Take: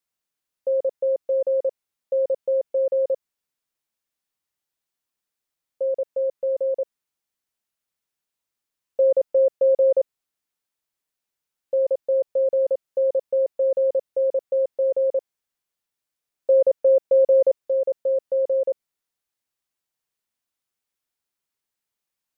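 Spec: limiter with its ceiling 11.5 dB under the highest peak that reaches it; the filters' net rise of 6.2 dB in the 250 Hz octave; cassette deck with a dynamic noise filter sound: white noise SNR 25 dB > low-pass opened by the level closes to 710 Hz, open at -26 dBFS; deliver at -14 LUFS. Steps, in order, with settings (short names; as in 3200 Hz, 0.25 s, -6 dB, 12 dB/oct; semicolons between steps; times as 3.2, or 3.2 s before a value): bell 250 Hz +8.5 dB; limiter -21.5 dBFS; white noise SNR 25 dB; low-pass opened by the level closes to 710 Hz, open at -26 dBFS; gain +14.5 dB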